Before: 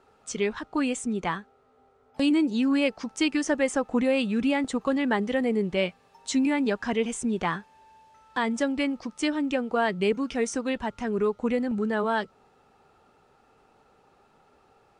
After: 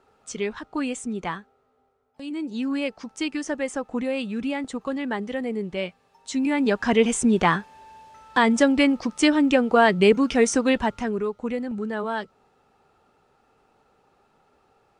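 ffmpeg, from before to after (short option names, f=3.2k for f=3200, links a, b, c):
-af "volume=21dB,afade=t=out:st=1.3:d=0.92:silence=0.223872,afade=t=in:st=2.22:d=0.39:silence=0.281838,afade=t=in:st=6.31:d=0.73:silence=0.281838,afade=t=out:st=10.79:d=0.43:silence=0.316228"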